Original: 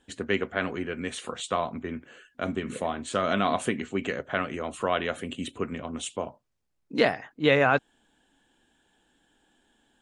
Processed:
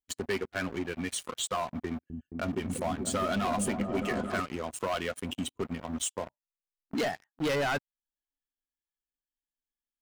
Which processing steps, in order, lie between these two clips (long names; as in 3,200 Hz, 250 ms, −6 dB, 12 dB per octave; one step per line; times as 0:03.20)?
spectral dynamics exaggerated over time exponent 1.5
high-shelf EQ 8,700 Hz +9 dB
notch filter 3,600 Hz, Q 26
leveller curve on the samples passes 5
downward compressor 2 to 1, threshold −32 dBFS, peak gain reduction 11.5 dB
0:01.88–0:04.40: echo whose low-pass opens from repeat to repeat 218 ms, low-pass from 200 Hz, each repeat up 1 octave, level 0 dB
level −5.5 dB